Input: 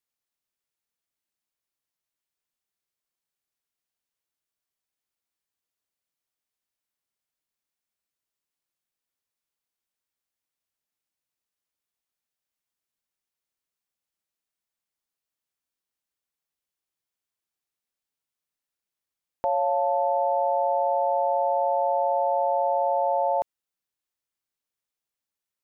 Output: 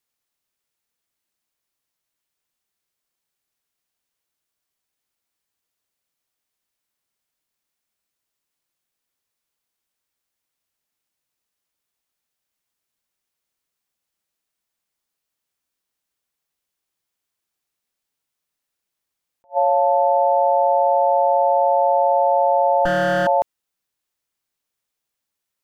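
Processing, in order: 22.85–23.27 s: comb filter that takes the minimum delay 3.9 ms; attacks held to a fixed rise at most 440 dB/s; trim +7 dB

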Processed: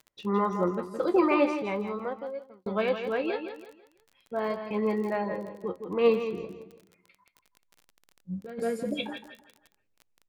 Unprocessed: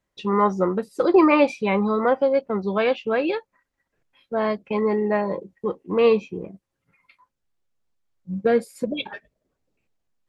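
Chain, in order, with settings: feedback delay 165 ms, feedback 34%, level -8 dB; 8.44–9.13 s: compressor with a negative ratio -23 dBFS, ratio -0.5; flange 0.39 Hz, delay 8.1 ms, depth 6.4 ms, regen +56%; crackle 31 per s -36 dBFS; 1.33–2.66 s: fade out; 4.82–5.28 s: treble shelf 4.1 kHz +7 dB; trim -3 dB

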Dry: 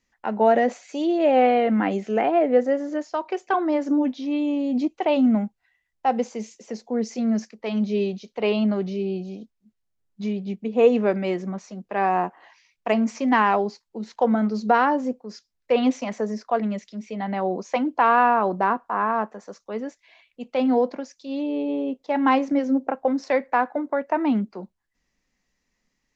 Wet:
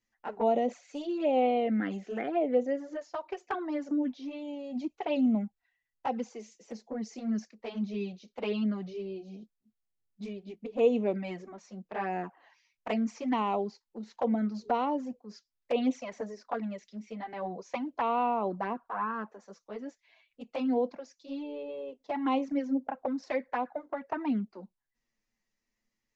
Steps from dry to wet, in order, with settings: touch-sensitive flanger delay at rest 9 ms, full sweep at -15.5 dBFS; trim -7 dB

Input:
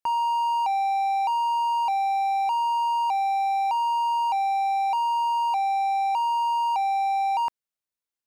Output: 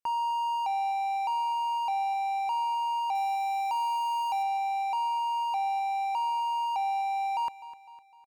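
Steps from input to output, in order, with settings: 3.15–4.43 s: treble shelf 6.4 kHz +9 dB; feedback delay 253 ms, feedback 51%, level -15.5 dB; trim -5 dB

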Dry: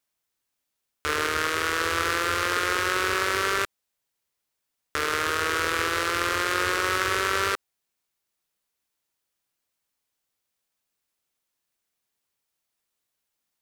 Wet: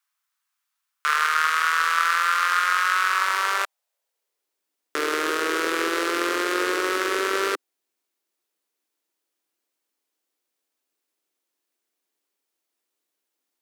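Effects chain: gain riding; high-pass sweep 1.2 kHz -> 320 Hz, 3.07–4.65 s

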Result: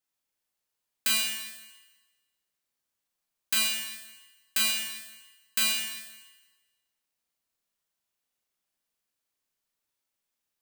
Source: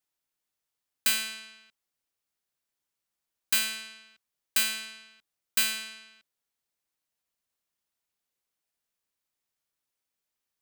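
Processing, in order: Schroeder reverb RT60 1.2 s, combs from 29 ms, DRR -1.5 dB; trim -2.5 dB

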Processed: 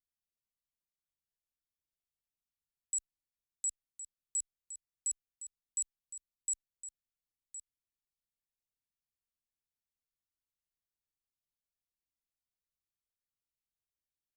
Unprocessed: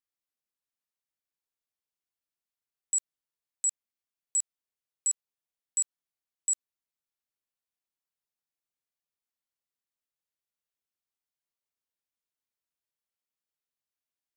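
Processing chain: amplifier tone stack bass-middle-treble 10-0-1; delay 1063 ms -12 dB; trim +13.5 dB

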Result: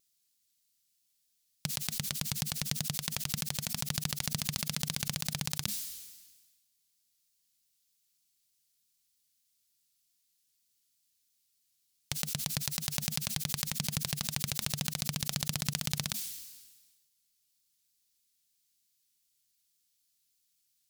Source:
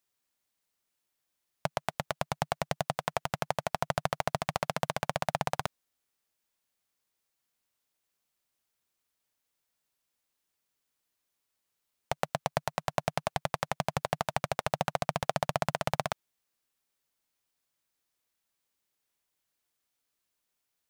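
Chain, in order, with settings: FFT filter 210 Hz 0 dB, 680 Hz -21 dB, 4.5 kHz +8 dB; vibrato 3.3 Hz 42 cents; decay stretcher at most 43 dB/s

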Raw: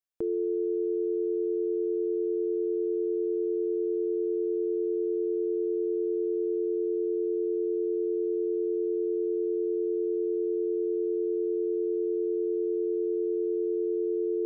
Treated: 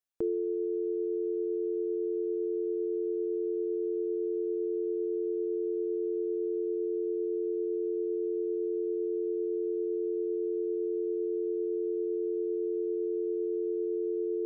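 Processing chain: reverb removal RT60 0.81 s

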